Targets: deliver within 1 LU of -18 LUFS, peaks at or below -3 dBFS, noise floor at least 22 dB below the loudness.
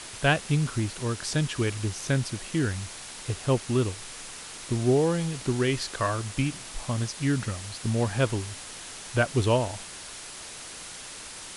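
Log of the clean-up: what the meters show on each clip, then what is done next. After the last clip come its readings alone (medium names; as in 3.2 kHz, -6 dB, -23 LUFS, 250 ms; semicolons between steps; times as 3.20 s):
noise floor -42 dBFS; noise floor target -51 dBFS; loudness -28.5 LUFS; peak level -7.5 dBFS; loudness target -18.0 LUFS
-> noise reduction 9 dB, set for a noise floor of -42 dBFS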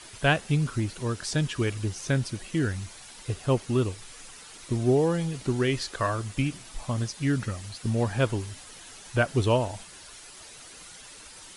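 noise floor -47 dBFS; noise floor target -50 dBFS
-> noise reduction 6 dB, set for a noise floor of -47 dBFS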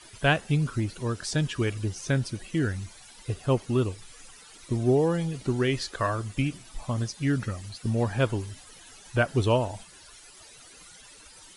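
noise floor -51 dBFS; loudness -28.0 LUFS; peak level -8.0 dBFS; loudness target -18.0 LUFS
-> trim +10 dB; peak limiter -3 dBFS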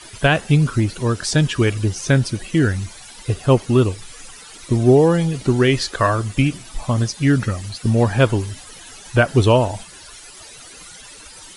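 loudness -18.0 LUFS; peak level -3.0 dBFS; noise floor -41 dBFS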